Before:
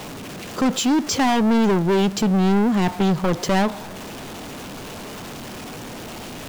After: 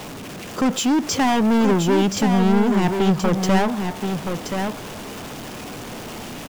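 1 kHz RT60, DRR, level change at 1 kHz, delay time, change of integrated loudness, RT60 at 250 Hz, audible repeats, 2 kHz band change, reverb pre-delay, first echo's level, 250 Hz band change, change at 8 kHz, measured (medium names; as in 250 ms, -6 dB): no reverb, no reverb, +1.0 dB, 1026 ms, 0.0 dB, no reverb, 1, +1.0 dB, no reverb, -6.0 dB, +1.0 dB, +1.0 dB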